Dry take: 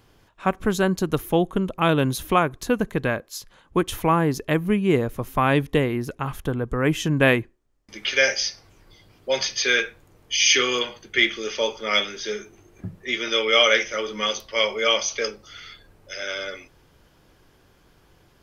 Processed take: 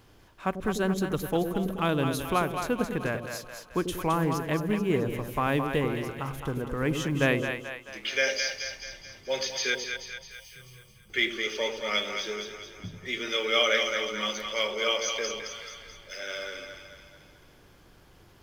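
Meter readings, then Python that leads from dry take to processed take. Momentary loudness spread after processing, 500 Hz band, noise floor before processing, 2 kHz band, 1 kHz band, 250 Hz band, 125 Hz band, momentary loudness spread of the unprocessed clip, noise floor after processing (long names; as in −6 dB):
15 LU, −6.0 dB, −58 dBFS, −6.5 dB, −6.0 dB, −6.0 dB, −6.0 dB, 12 LU, −56 dBFS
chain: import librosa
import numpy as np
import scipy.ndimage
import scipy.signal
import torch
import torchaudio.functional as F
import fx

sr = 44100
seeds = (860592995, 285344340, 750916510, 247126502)

y = fx.law_mismatch(x, sr, coded='mu')
y = fx.spec_box(y, sr, start_s=9.75, length_s=1.34, low_hz=210.0, high_hz=7600.0, gain_db=-30)
y = fx.echo_split(y, sr, split_hz=560.0, low_ms=94, high_ms=217, feedback_pct=52, wet_db=-6)
y = y * librosa.db_to_amplitude(-7.5)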